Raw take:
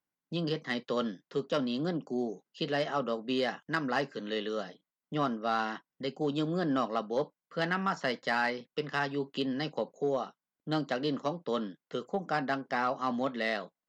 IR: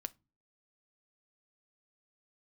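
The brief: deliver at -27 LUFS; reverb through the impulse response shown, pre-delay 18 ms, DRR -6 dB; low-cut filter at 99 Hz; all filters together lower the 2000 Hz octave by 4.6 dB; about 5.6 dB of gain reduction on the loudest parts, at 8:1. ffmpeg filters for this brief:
-filter_complex "[0:a]highpass=99,equalizer=f=2k:t=o:g=-6,acompressor=threshold=-32dB:ratio=8,asplit=2[a][b];[1:a]atrim=start_sample=2205,adelay=18[c];[b][c]afir=irnorm=-1:irlink=0,volume=8.5dB[d];[a][d]amix=inputs=2:normalize=0,volume=4.5dB"

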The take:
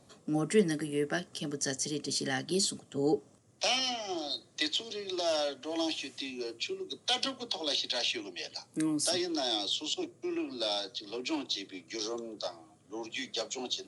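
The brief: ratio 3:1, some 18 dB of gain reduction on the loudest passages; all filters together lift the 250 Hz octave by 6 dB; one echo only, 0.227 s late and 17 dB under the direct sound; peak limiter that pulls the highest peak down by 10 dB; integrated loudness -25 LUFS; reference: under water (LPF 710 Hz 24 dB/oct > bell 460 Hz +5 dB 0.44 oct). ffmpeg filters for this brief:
-af "equalizer=f=250:t=o:g=7.5,acompressor=threshold=-42dB:ratio=3,alimiter=level_in=9dB:limit=-24dB:level=0:latency=1,volume=-9dB,lowpass=f=710:w=0.5412,lowpass=f=710:w=1.3066,equalizer=f=460:t=o:w=0.44:g=5,aecho=1:1:227:0.141,volume=19dB"

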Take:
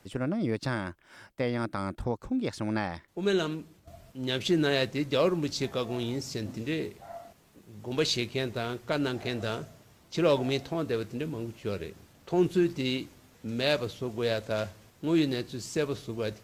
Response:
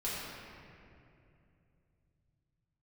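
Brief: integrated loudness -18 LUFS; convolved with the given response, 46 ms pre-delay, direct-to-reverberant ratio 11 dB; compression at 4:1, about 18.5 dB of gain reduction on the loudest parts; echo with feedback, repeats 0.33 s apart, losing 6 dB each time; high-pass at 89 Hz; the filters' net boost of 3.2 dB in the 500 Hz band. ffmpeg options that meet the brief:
-filter_complex "[0:a]highpass=89,equalizer=f=500:t=o:g=4,acompressor=threshold=-40dB:ratio=4,aecho=1:1:330|660|990|1320|1650|1980:0.501|0.251|0.125|0.0626|0.0313|0.0157,asplit=2[a][b];[1:a]atrim=start_sample=2205,adelay=46[c];[b][c]afir=irnorm=-1:irlink=0,volume=-16dB[d];[a][d]amix=inputs=2:normalize=0,volume=23dB"

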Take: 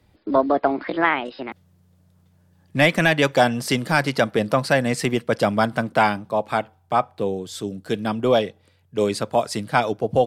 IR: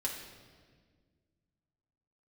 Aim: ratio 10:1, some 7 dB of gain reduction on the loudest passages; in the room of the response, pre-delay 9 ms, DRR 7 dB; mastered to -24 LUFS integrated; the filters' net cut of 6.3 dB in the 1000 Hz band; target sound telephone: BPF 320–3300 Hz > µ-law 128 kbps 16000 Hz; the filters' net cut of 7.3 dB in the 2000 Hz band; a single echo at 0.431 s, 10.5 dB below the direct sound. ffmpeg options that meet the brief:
-filter_complex "[0:a]equalizer=f=1k:t=o:g=-8,equalizer=f=2k:t=o:g=-6,acompressor=threshold=-22dB:ratio=10,aecho=1:1:431:0.299,asplit=2[a][b];[1:a]atrim=start_sample=2205,adelay=9[c];[b][c]afir=irnorm=-1:irlink=0,volume=-9.5dB[d];[a][d]amix=inputs=2:normalize=0,highpass=320,lowpass=3.3k,volume=6.5dB" -ar 16000 -c:a pcm_mulaw

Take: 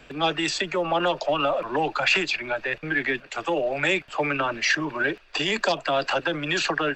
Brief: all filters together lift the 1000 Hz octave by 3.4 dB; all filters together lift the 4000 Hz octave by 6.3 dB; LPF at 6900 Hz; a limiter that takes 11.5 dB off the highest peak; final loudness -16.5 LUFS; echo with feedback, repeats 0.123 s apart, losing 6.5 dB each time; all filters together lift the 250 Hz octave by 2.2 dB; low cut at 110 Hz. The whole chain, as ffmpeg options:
-af "highpass=110,lowpass=6.9k,equalizer=f=250:t=o:g=3,equalizer=f=1k:t=o:g=4,equalizer=f=4k:t=o:g=8.5,alimiter=limit=-16dB:level=0:latency=1,aecho=1:1:123|246|369|492|615|738:0.473|0.222|0.105|0.0491|0.0231|0.0109,volume=7.5dB"

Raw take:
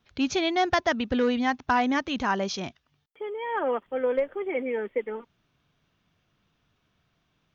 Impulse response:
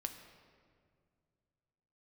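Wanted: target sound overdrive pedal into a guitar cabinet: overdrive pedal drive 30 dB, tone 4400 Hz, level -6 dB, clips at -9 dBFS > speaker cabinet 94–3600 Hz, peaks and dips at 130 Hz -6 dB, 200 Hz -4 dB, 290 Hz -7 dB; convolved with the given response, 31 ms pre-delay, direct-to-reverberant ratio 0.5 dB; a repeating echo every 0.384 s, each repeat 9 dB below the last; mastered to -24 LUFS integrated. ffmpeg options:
-filter_complex "[0:a]aecho=1:1:384|768|1152|1536:0.355|0.124|0.0435|0.0152,asplit=2[a][b];[1:a]atrim=start_sample=2205,adelay=31[c];[b][c]afir=irnorm=-1:irlink=0,volume=1dB[d];[a][d]amix=inputs=2:normalize=0,asplit=2[e][f];[f]highpass=f=720:p=1,volume=30dB,asoftclip=type=tanh:threshold=-9dB[g];[e][g]amix=inputs=2:normalize=0,lowpass=f=4.4k:p=1,volume=-6dB,highpass=94,equalizer=f=130:t=q:w=4:g=-6,equalizer=f=200:t=q:w=4:g=-4,equalizer=f=290:t=q:w=4:g=-7,lowpass=f=3.6k:w=0.5412,lowpass=f=3.6k:w=1.3066,volume=-7dB"

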